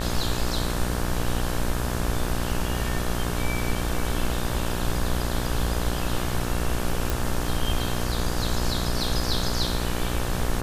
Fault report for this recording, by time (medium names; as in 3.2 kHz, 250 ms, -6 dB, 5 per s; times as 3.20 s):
buzz 60 Hz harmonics 30 -29 dBFS
7.10 s: pop